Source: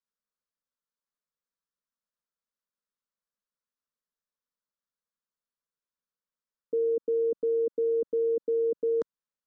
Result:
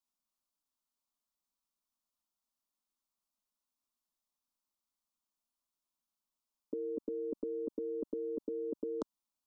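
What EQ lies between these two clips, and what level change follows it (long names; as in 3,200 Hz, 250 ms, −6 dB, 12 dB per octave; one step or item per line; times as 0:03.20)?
phaser with its sweep stopped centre 480 Hz, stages 6
+4.5 dB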